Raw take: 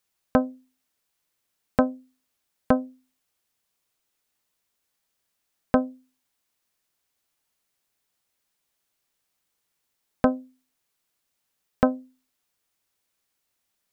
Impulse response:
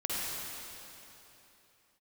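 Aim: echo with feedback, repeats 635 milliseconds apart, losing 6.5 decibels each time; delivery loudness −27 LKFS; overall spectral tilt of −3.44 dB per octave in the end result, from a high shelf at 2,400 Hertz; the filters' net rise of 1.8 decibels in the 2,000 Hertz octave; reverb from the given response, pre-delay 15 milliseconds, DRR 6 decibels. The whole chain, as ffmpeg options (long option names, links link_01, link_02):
-filter_complex "[0:a]equalizer=frequency=2000:width_type=o:gain=6,highshelf=frequency=2400:gain=-7.5,aecho=1:1:635|1270|1905|2540|3175|3810:0.473|0.222|0.105|0.0491|0.0231|0.0109,asplit=2[link_01][link_02];[1:a]atrim=start_sample=2205,adelay=15[link_03];[link_02][link_03]afir=irnorm=-1:irlink=0,volume=-13dB[link_04];[link_01][link_04]amix=inputs=2:normalize=0,volume=2.5dB"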